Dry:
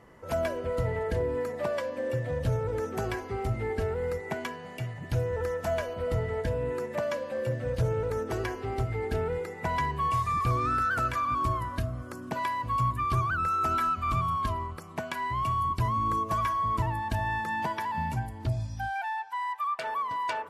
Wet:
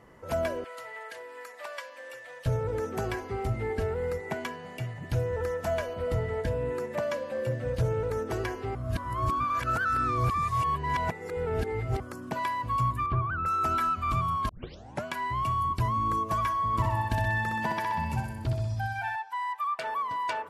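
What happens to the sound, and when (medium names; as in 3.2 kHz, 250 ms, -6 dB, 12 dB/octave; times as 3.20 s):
0.64–2.46 s: high-pass 1.2 kHz
8.75–12.00 s: reverse
13.06–13.46 s: distance through air 490 m
14.49 s: tape start 0.55 s
16.67–19.16 s: feedback delay 63 ms, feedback 58%, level -4.5 dB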